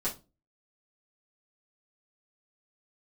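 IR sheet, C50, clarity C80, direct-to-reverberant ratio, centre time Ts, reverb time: 13.0 dB, 21.5 dB, -10.0 dB, 15 ms, 0.25 s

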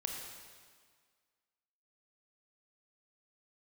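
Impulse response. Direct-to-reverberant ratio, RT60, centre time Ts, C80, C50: 1.0 dB, 1.8 s, 69 ms, 3.5 dB, 2.0 dB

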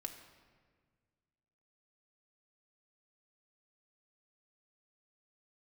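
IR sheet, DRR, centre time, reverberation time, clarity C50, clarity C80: 3.5 dB, 23 ms, 1.7 s, 8.5 dB, 10.0 dB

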